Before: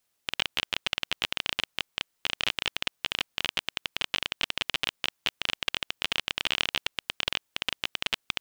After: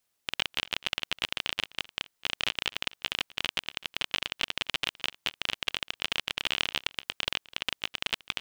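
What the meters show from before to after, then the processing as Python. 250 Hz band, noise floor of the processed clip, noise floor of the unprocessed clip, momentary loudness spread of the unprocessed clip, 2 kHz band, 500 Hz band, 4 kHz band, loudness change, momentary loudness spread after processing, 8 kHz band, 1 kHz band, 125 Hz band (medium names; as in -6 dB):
-1.5 dB, -78 dBFS, -77 dBFS, 4 LU, -1.5 dB, -1.5 dB, -1.5 dB, -1.5 dB, 4 LU, -1.5 dB, -1.5 dB, -1.5 dB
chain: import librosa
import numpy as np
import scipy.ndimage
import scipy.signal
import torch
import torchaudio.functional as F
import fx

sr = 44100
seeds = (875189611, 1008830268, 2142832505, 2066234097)

y = x + 10.0 ** (-21.0 / 20.0) * np.pad(x, (int(255 * sr / 1000.0), 0))[:len(x)]
y = F.gain(torch.from_numpy(y), -1.5).numpy()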